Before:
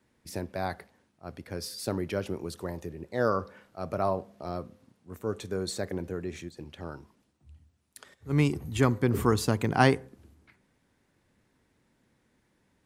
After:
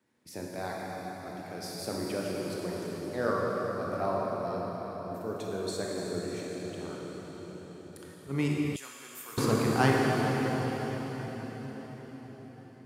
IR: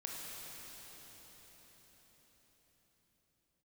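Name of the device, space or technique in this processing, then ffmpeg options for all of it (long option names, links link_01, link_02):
cathedral: -filter_complex "[0:a]highpass=130[link_01];[1:a]atrim=start_sample=2205[link_02];[link_01][link_02]afir=irnorm=-1:irlink=0,asettb=1/sr,asplit=3[link_03][link_04][link_05];[link_03]atrim=end=8.764[link_06];[link_04]atrim=start=8.76:end=9.38,asetpts=PTS-STARTPTS,afade=type=in:duration=0.004:curve=qsin,afade=type=out:start_time=0.616:duration=0.004:curve=qsin,aderivative[link_07];[link_05]atrim=start=9.376[link_08];[link_06][link_07]acrossfade=duration=0.004:curve1=hsin:curve2=qsin[link_09];[link_09][link_08]acrossfade=duration=0.004:curve1=qsin:curve2=hsin"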